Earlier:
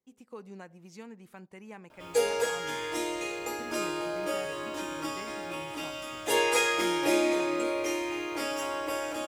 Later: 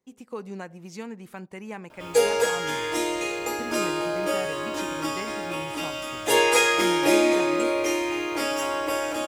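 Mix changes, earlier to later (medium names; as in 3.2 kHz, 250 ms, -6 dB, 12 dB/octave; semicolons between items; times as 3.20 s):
speech +9.0 dB; background +6.0 dB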